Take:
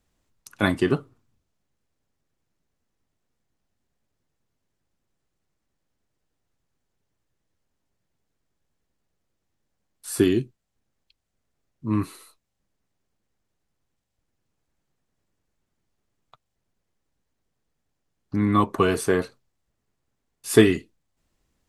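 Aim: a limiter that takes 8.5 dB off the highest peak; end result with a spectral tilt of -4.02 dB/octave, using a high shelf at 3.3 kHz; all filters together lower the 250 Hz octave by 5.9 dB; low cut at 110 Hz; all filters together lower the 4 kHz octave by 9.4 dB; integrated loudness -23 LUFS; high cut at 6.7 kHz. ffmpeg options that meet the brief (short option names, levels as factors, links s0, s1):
-af "highpass=110,lowpass=6700,equalizer=f=250:t=o:g=-8,highshelf=f=3300:g=-6.5,equalizer=f=4000:t=o:g=-8,volume=2,alimiter=limit=0.398:level=0:latency=1"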